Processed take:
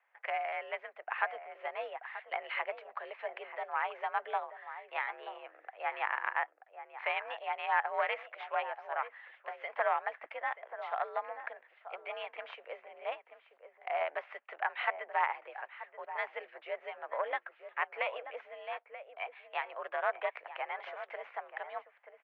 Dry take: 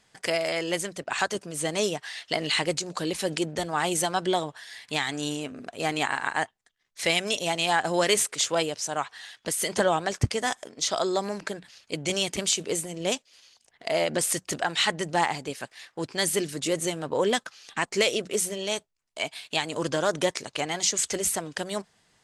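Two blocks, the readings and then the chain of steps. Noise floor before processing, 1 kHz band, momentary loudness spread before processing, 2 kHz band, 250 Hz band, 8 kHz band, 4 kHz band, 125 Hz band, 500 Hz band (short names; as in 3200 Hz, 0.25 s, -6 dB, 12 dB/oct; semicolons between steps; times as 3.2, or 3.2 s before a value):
-68 dBFS, -4.5 dB, 10 LU, -6.5 dB, under -35 dB, under -40 dB, -22.0 dB, under -40 dB, -11.5 dB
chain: outdoor echo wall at 160 m, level -10 dB; added harmonics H 2 -10 dB, 6 -19 dB, 8 -21 dB, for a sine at -7 dBFS; mistuned SSB +63 Hz 560–2300 Hz; gain -6.5 dB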